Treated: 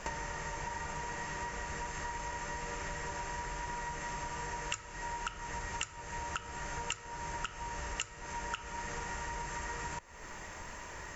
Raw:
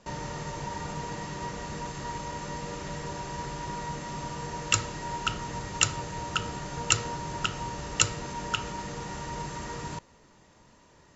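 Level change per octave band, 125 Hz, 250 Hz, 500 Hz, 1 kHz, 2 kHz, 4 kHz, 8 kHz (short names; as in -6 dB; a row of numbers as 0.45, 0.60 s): -10.0 dB, -11.0 dB, -7.0 dB, -4.0 dB, -3.5 dB, -11.5 dB, n/a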